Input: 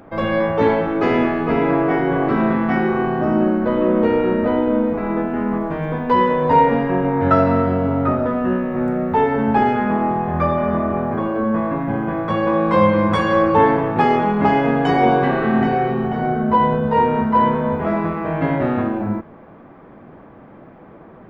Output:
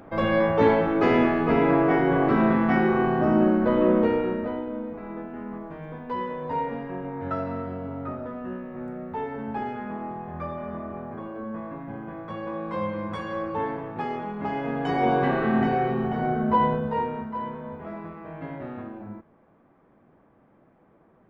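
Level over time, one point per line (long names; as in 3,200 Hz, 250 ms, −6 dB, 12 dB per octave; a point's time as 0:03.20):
0:03.91 −3 dB
0:04.70 −15 dB
0:14.40 −15 dB
0:15.25 −5.5 dB
0:16.65 −5.5 dB
0:17.36 −17 dB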